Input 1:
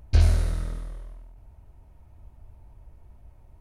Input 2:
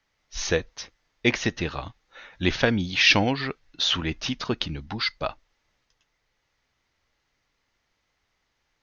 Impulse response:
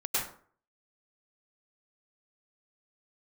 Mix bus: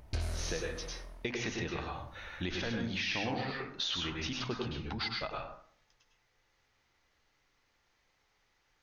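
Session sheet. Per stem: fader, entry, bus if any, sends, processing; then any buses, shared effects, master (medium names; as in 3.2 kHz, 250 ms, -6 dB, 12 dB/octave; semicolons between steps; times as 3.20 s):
+1.5 dB, 0.00 s, no send, bass shelf 160 Hz -10 dB
-6.0 dB, 0.00 s, send -3.5 dB, hum notches 50/100/150/200/250 Hz; peak limiter -14 dBFS, peak gain reduction 10.5 dB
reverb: on, RT60 0.50 s, pre-delay 92 ms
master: compression 2.5:1, threshold -37 dBFS, peak gain reduction 11.5 dB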